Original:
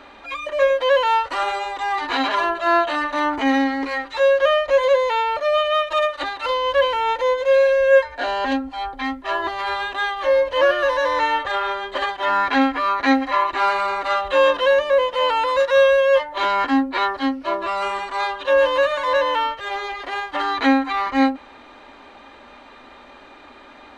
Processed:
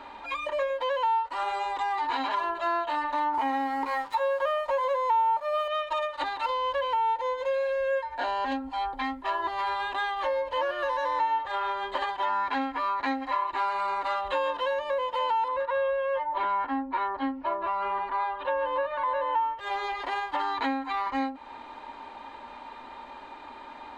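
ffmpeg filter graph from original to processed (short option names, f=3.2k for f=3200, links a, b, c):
-filter_complex "[0:a]asettb=1/sr,asplit=3[a][b][c];[a]atrim=end=3.344[d];[b]atrim=start=3.34:end=5.68,asetpts=PTS-STARTPTS,afade=t=in:d=0.004:c=qsin,afade=t=out:st=2.336:d=0.004:c=qsin,equalizer=f=950:t=o:w=1.4:g=9,aeval=exprs='sgn(val(0))*max(abs(val(0))-0.0119,0)':c=same[e];[c]atrim=start=5.676[f];[d][e]acrossfade=d=0.004:c1=hsin:c2=qsin[g];[g][f]acrossfade=d=0.004:c1=qsin:c2=hsin,asettb=1/sr,asplit=3[h][i][j];[h]atrim=end=15.484[k];[i]atrim=start=15.48:end=19.59,asetpts=PTS-STARTPTS,afade=t=in:d=0.004:c=qsin,afade=t=out:st=4.106:d=0.004:c=qsin,lowpass=2.2k,aphaser=in_gain=1:out_gain=1:delay=1.7:decay=0.22:speed=1.2:type=triangular[l];[j]atrim=start=19.586[m];[k][l]acrossfade=d=0.004:c1=hsin:c2=qsin[n];[n][m]acrossfade=d=0.004:c1=qsin:c2=hsin,equalizer=f=920:w=6.3:g=14.5,bandreject=f=5.9k:w=12,acompressor=threshold=-23dB:ratio=4,volume=-4dB"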